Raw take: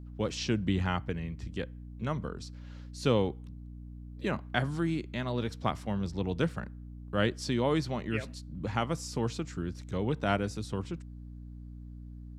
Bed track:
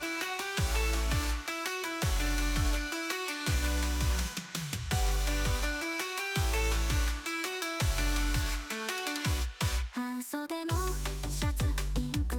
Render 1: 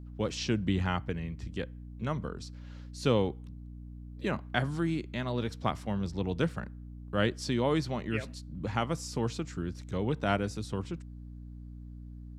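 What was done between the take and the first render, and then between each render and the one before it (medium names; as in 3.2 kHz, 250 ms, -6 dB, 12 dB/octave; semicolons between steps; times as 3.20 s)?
no audible change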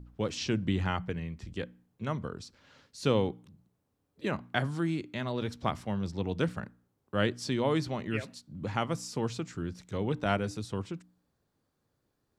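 de-hum 60 Hz, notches 5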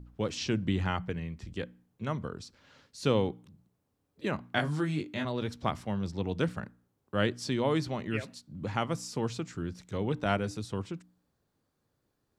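4.55–5.25 s: doubling 20 ms -3 dB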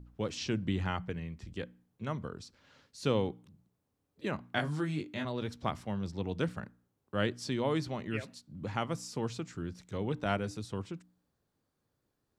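trim -3 dB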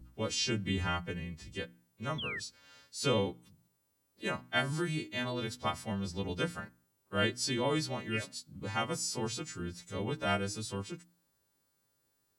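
partials quantised in pitch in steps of 2 st; 2.18–2.40 s: painted sound fall 1.7–3.5 kHz -39 dBFS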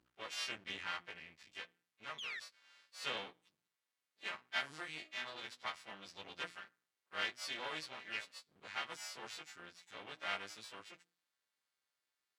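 half-wave rectifier; band-pass filter 2.3 kHz, Q 0.83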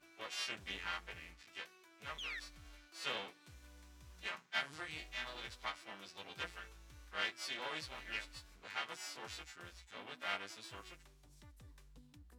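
add bed track -29 dB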